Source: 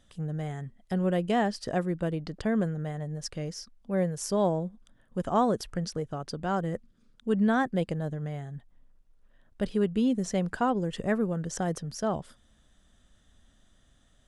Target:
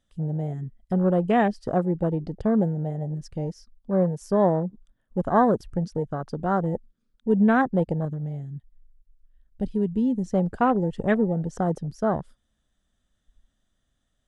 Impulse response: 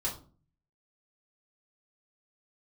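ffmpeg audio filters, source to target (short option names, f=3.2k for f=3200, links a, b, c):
-filter_complex "[0:a]afwtdn=0.0178,asettb=1/sr,asplit=3[a][b][c];[a]atrim=end=8.054[d];[b]atrim=start=8.05:end=10.32,asetpts=PTS-STARTPTS,afade=t=in:d=0.004:c=qsin,afade=t=out:st=2.266:d=0.004:c=qsin,equalizer=f=700:t=o:w=2.4:g=-8.5[e];[c]atrim=start=10.316[f];[d][e]acrossfade=d=0.004:c1=hsin:c2=qsin[g];[g][f]acrossfade=d=0.004:c1=qsin:c2=hsin,volume=5.5dB"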